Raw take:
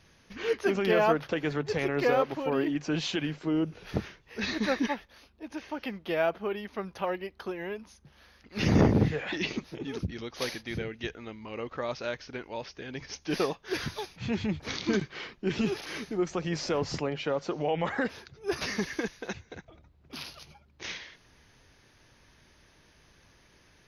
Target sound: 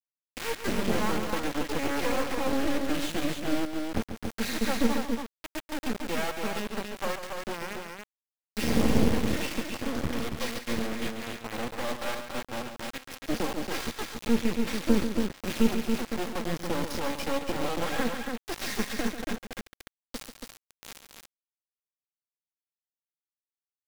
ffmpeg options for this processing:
-filter_complex "[0:a]equalizer=f=230:t=o:w=0.2:g=9.5,aecho=1:1:3.7:0.67,acrossover=split=250|3000[a][b][c];[b]acompressor=threshold=-25dB:ratio=6[d];[a][d][c]amix=inputs=3:normalize=0,acrossover=split=160|790[e][f][g];[g]asoftclip=type=tanh:threshold=-29dB[h];[e][f][h]amix=inputs=3:normalize=0,acrossover=split=520[i][j];[i]aeval=exprs='val(0)*(1-0.5/2+0.5/2*cos(2*PI*1.2*n/s))':c=same[k];[j]aeval=exprs='val(0)*(1-0.5/2-0.5/2*cos(2*PI*1.2*n/s))':c=same[l];[k][l]amix=inputs=2:normalize=0,acrusher=bits=3:dc=4:mix=0:aa=0.000001,asplit=2[m][n];[n]aecho=0:1:139.9|279.9:0.355|0.562[o];[m][o]amix=inputs=2:normalize=0,adynamicequalizer=threshold=0.00282:dfrequency=4300:dqfactor=0.7:tfrequency=4300:tqfactor=0.7:attack=5:release=100:ratio=0.375:range=2:mode=cutabove:tftype=highshelf,volume=3.5dB"

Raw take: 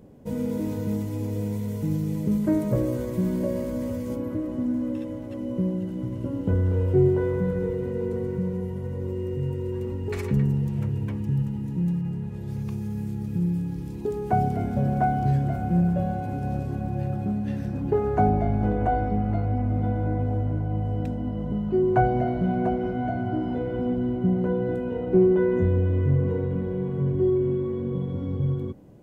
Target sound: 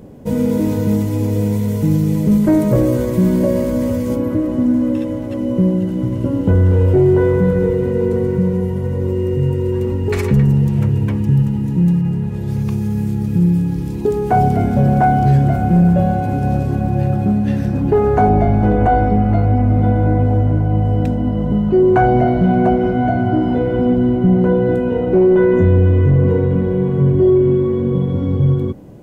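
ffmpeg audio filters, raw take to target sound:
-af "apsyclip=18dB,volume=-6.5dB"

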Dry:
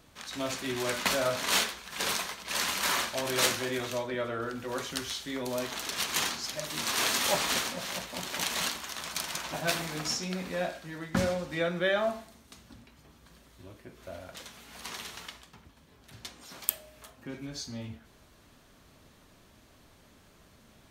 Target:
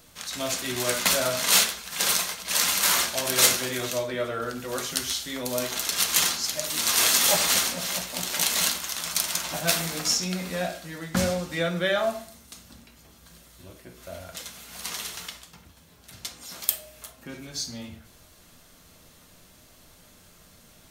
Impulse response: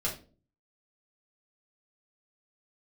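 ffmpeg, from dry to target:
-filter_complex "[0:a]highshelf=f=4.8k:g=12,asoftclip=type=hard:threshold=-9dB,asplit=2[a][b];[1:a]atrim=start_sample=2205[c];[b][c]afir=irnorm=-1:irlink=0,volume=-11dB[d];[a][d]amix=inputs=2:normalize=0"

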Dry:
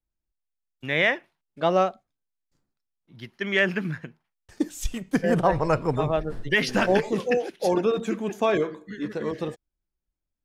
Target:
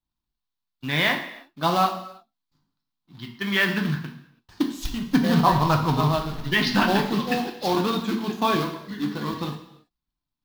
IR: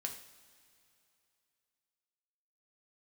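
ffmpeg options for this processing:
-filter_complex "[0:a]acrusher=bits=3:mode=log:mix=0:aa=0.000001,equalizer=f=125:t=o:w=1:g=3,equalizer=f=250:t=o:w=1:g=8,equalizer=f=500:t=o:w=1:g=-10,equalizer=f=1k:t=o:w=1:g=11,equalizer=f=2k:t=o:w=1:g=-4,equalizer=f=4k:t=o:w=1:g=11,equalizer=f=8k:t=o:w=1:g=-9[a];[1:a]atrim=start_sample=2205,afade=t=out:st=0.39:d=0.01,atrim=end_sample=17640[b];[a][b]afir=irnorm=-1:irlink=0"

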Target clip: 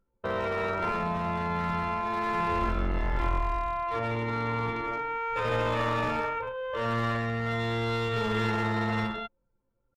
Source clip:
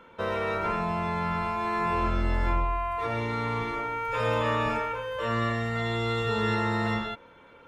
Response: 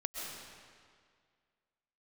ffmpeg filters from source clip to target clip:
-af "anlmdn=10,aeval=exprs='clip(val(0),-1,0.0501)':c=same,atempo=0.77"

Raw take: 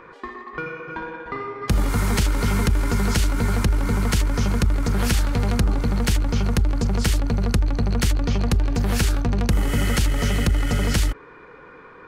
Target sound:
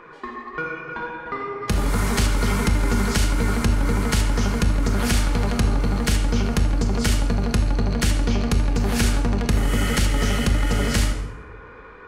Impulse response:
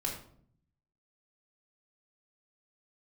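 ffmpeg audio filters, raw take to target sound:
-filter_complex "[0:a]flanger=delay=5.7:depth=3:regen=78:speed=1.5:shape=triangular,asplit=2[a][b];[1:a]atrim=start_sample=2205,asetrate=23814,aresample=44100,lowshelf=f=170:g=-10.5[c];[b][c]afir=irnorm=-1:irlink=0,volume=-4.5dB[d];[a][d]amix=inputs=2:normalize=0"

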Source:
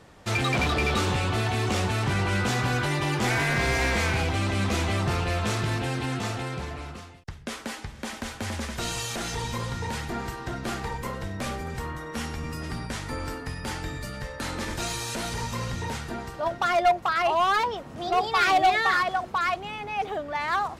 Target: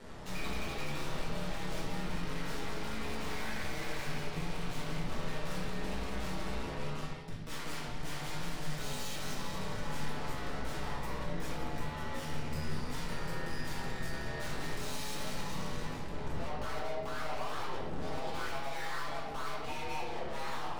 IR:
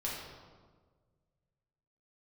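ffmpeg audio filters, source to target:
-filter_complex "[0:a]asettb=1/sr,asplit=3[a][b][c];[a]atrim=end=15.874[d];[b]atrim=start=15.87:end=18.48,asetpts=PTS-STARTPTS,afade=t=in:d=0.004:c=qsin,afade=t=out:st=2.606:d=0.004:c=qsin,lowshelf=f=440:g=11[e];[c]atrim=start=18.476[f];[d][e]acrossfade=d=0.004:c1=hsin:c2=qsin[g];[g][f]acrossfade=d=0.004:c1=qsin:c2=hsin,acompressor=threshold=-30dB:ratio=6,aeval=exprs='val(0)*sin(2*PI*74*n/s)':c=same,aeval=exprs='(tanh(224*val(0)+0.55)-tanh(0.55))/224':c=same[h];[1:a]atrim=start_sample=2205,afade=t=out:st=0.29:d=0.01,atrim=end_sample=13230[i];[h][i]afir=irnorm=-1:irlink=0,volume=6dB"

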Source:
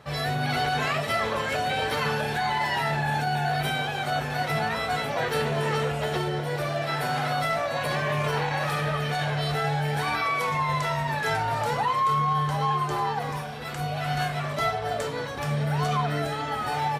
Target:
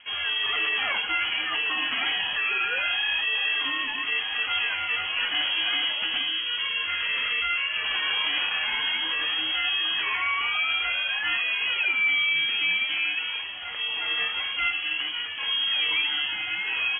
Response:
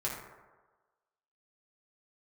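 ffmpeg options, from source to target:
-filter_complex "[0:a]asettb=1/sr,asplit=3[a][b][c];[a]atrim=end=6.314[d];[b]atrim=start=6.31:end=7.85,asetpts=PTS-STARTPTS,afade=t=in:d=0.004:c=qsin,afade=t=out:st=1.536:d=0.004:c=qsin,bandreject=f=2.6k:w=8.9[e];[c]atrim=start=7.846[f];[d][e]acrossfade=d=0.004:c1=hsin:c2=qsin[g];[g][f]acrossfade=d=0.004:c1=qsin:c2=hsin,lowpass=f=2.9k:t=q:w=0.5098,lowpass=f=2.9k:t=q:w=0.6013,lowpass=f=2.9k:t=q:w=0.9,lowpass=f=2.9k:t=q:w=2.563,afreqshift=-3400"

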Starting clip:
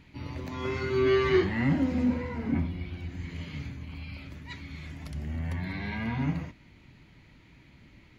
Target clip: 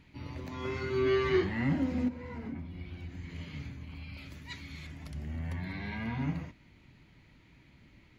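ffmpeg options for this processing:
-filter_complex "[0:a]asettb=1/sr,asplit=3[a][b][c];[a]atrim=end=2.084[d];[b]atrim=start=2.08:end=3.3,asetpts=PTS-STARTPTS,afade=t=in:d=0.004:c=qsin,afade=t=out:st=1.216:d=0.004:c=qsin,acompressor=threshold=-33dB:ratio=6[e];[c]atrim=start=3.296[f];[d][e]acrossfade=d=0.004:c1=hsin:c2=qsin[g];[g][f]acrossfade=d=0.004:c1=qsin:c2=hsin,asettb=1/sr,asplit=3[h][i][j];[h]atrim=end=4.174[k];[i]atrim=start=4.17:end=4.87,asetpts=PTS-STARTPTS,afade=t=in:d=0.004:c=qsin,afade=t=out:st=0.696:d=0.004:c=qsin,highshelf=f=3.3k:g=9[l];[j]atrim=start=4.866[m];[k][l]acrossfade=d=0.004:c1=hsin:c2=qsin[n];[n][m]acrossfade=d=0.004:c1=qsin:c2=hsin,volume=-4dB"

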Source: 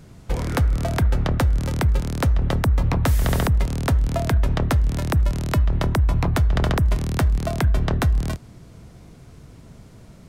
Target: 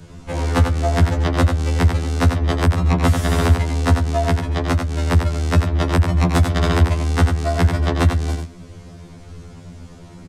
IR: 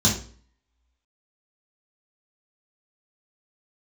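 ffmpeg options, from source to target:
-filter_complex "[0:a]lowpass=9k,asplit=2[a][b];[b]asoftclip=type=tanh:threshold=-28dB,volume=-10dB[c];[a][c]amix=inputs=2:normalize=0,asettb=1/sr,asplit=3[d][e][f];[d]atrim=end=4.134[g];[e]atrim=start=4.13:end=5.06,asetpts=PTS-STARTPTS,afade=t=in:d=0.004:c=qsin,afade=t=out:st=0.926:d=0.004:c=qsin,acompressor=threshold=-18dB:ratio=6[h];[f]atrim=start=5.056[i];[g][h]acrossfade=d=0.004:c1=hsin:c2=qsin[j];[j][i]acrossfade=d=0.004:c1=qsin:c2=hsin,asettb=1/sr,asplit=3[k][l][m];[k]atrim=end=6.204[n];[l]atrim=start=6.2:end=6.69,asetpts=PTS-STARTPTS,afade=t=in:d=0.004:c=qsin,afade=t=out:st=0.486:d=0.004:c=qsin,highshelf=f=6.5k:g=7[o];[m]atrim=start=6.686[p];[n][o]acrossfade=d=0.004:c1=hsin:c2=qsin[q];[q][p]acrossfade=d=0.004:c1=qsin:c2=hsin,aecho=1:1:93:0.531,afftfilt=real='re*2*eq(mod(b,4),0)':imag='im*2*eq(mod(b,4),0)':win_size=2048:overlap=0.75,volume=5.5dB"

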